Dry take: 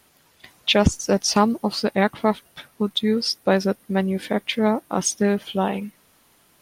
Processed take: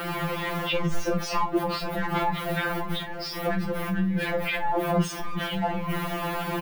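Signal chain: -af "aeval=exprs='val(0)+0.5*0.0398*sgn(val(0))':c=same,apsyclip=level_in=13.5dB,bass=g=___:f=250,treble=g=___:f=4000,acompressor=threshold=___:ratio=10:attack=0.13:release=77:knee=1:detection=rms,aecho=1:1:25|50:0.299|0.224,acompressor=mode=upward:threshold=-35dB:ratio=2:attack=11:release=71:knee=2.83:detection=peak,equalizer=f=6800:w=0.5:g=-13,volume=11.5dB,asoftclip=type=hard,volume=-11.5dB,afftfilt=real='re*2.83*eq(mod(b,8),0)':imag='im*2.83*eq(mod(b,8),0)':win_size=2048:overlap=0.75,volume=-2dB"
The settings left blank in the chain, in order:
1, -13, -12dB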